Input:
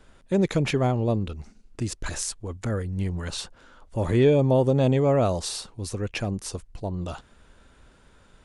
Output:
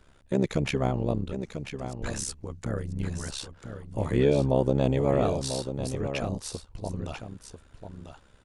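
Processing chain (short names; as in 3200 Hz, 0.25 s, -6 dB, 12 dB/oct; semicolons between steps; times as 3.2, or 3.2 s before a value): 1.35–2.01 compressor 5:1, threshold -41 dBFS, peak gain reduction 15.5 dB; AM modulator 68 Hz, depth 75%; on a send: echo 0.993 s -9 dB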